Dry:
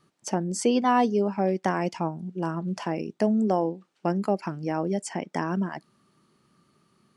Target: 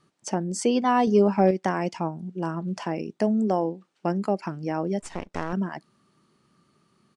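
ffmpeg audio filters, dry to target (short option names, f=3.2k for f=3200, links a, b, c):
-filter_complex "[0:a]asettb=1/sr,asplit=3[a][b][c];[a]atrim=end=5.004[d];[b]atrim=start=5:end=5.53,asetpts=PTS-STARTPTS,afade=t=in:d=0.004:c=qsin,afade=t=out:st=0.526:d=0.004:c=qsin,aeval=exprs='max(val(0),0)':c=same[e];[c]atrim=start=5.526[f];[d][e]acrossfade=d=0.004:c1=hsin:c2=qsin[g];[g][f]acrossfade=d=0.004:c1=qsin:c2=hsin,aresample=22050,aresample=44100,asettb=1/sr,asplit=3[h][i][j];[h]atrim=end=1.074[k];[i]atrim=start=1.07:end=1.51,asetpts=PTS-STARTPTS,afade=t=in:d=0.004:c=qsin,afade=t=out:st=0.436:d=0.004:c=qsin,acontrast=47[l];[j]atrim=start=1.506[m];[k][l]acrossfade=d=0.004:c1=hsin:c2=qsin[n];[n][m]acrossfade=d=0.004:c1=qsin:c2=hsin"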